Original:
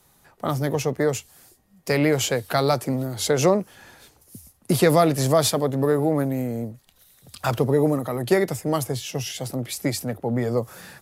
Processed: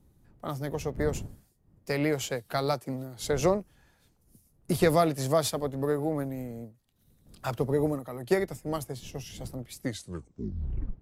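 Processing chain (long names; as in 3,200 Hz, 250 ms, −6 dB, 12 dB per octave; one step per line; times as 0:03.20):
turntable brake at the end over 1.23 s
wind on the microphone 150 Hz −37 dBFS
expander for the loud parts 1.5 to 1, over −40 dBFS
level −5 dB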